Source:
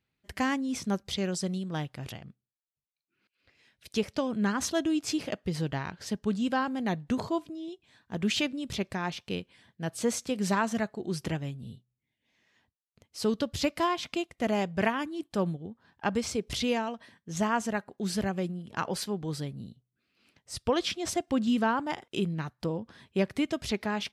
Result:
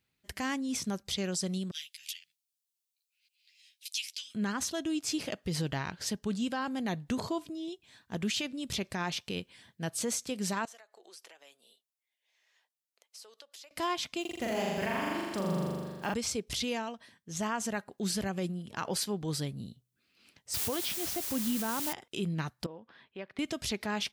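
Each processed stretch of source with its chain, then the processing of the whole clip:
1.71–4.35 inverse Chebyshev high-pass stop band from 1000 Hz, stop band 50 dB + doubler 12 ms -3 dB
10.65–13.71 HPF 510 Hz 24 dB/oct + compressor 16:1, threshold -47 dBFS
14.21–16.14 block floating point 7-bit + flutter echo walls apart 7 m, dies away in 1.5 s
20.54–21.93 LPF 5300 Hz 24 dB/oct + low shelf 470 Hz +5 dB + requantised 6-bit, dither triangular
22.66–23.39 HPF 750 Hz 6 dB/oct + air absorption 370 m + compressor 1.5:1, threshold -52 dBFS
whole clip: high shelf 3300 Hz +8.5 dB; vocal rider within 4 dB 0.5 s; limiter -19 dBFS; gain -4 dB

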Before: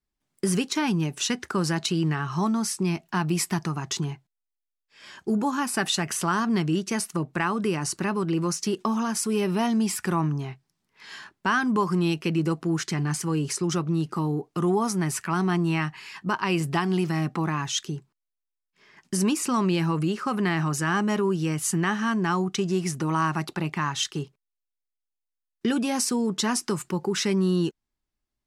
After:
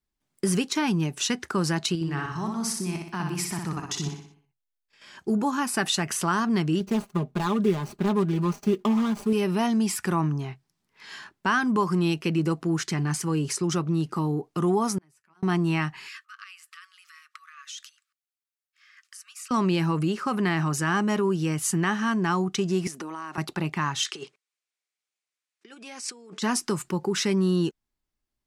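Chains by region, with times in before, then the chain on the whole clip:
1.95–5.17 level quantiser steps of 10 dB + feedback echo 61 ms, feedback 49%, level -4 dB
6.8–9.33 median filter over 25 samples + comb 4.9 ms
14.98–15.43 de-esser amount 30% + notch comb 170 Hz + flipped gate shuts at -27 dBFS, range -33 dB
16.08–19.51 compressor 16:1, threshold -35 dBFS + brick-wall FIR high-pass 1100 Hz
22.87–23.38 HPF 230 Hz 24 dB/oct + compressor 10:1, threshold -31 dBFS
24.06–26.42 negative-ratio compressor -32 dBFS, ratio -0.5 + speaker cabinet 460–9300 Hz, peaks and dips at 630 Hz -4 dB, 910 Hz -6 dB, 2300 Hz +5 dB
whole clip: dry

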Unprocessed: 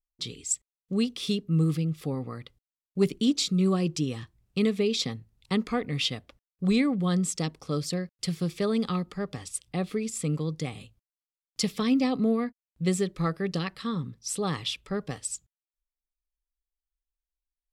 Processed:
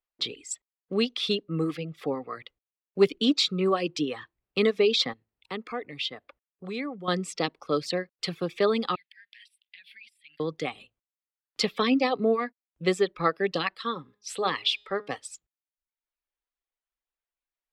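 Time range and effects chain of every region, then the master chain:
5.13–7.08 HPF 44 Hz + compressor 1.5:1, threshold -50 dBFS
8.95–10.4 elliptic high-pass 1600 Hz + compressor 12:1, threshold -47 dBFS + fixed phaser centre 3000 Hz, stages 4
13.73–15.1 low shelf 270 Hz -7 dB + de-hum 206.5 Hz, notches 38
whole clip: three-band isolator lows -19 dB, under 300 Hz, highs -17 dB, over 3400 Hz; reverb removal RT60 0.75 s; dynamic EQ 4200 Hz, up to +6 dB, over -53 dBFS, Q 1.5; gain +7.5 dB

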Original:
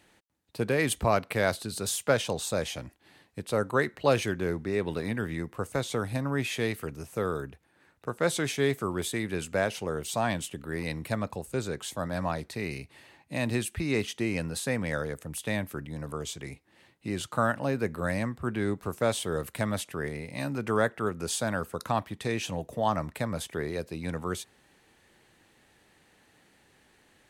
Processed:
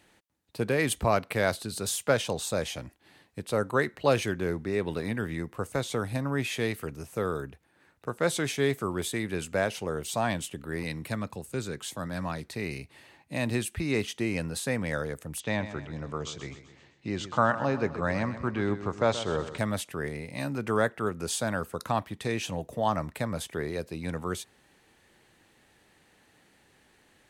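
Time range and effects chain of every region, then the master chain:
10.84–12.49 HPF 80 Hz + dynamic EQ 660 Hz, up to -6 dB, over -44 dBFS, Q 1.1
15.4–19.58 steep low-pass 7000 Hz + dynamic EQ 940 Hz, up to +6 dB, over -44 dBFS, Q 1.8 + feedback echo 0.128 s, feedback 50%, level -12.5 dB
whole clip: dry

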